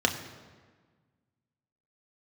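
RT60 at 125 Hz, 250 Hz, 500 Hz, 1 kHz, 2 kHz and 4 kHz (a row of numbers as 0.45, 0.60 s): 2.0, 1.8, 1.5, 1.5, 1.3, 1.1 s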